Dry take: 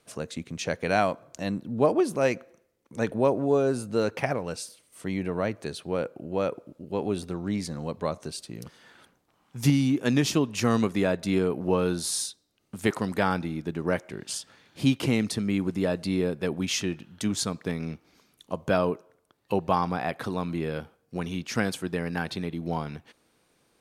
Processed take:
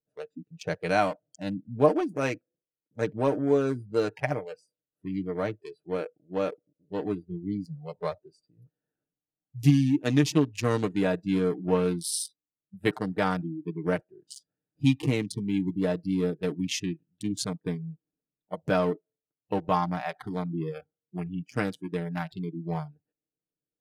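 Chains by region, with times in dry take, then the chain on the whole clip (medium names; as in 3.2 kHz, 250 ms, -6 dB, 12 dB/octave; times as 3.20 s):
11.88–12.95 s: treble shelf 7.3 kHz +5 dB + band-stop 6.8 kHz, Q 5.1
whole clip: local Wiener filter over 41 samples; spectral noise reduction 25 dB; comb 6.6 ms, depth 59%; trim -1.5 dB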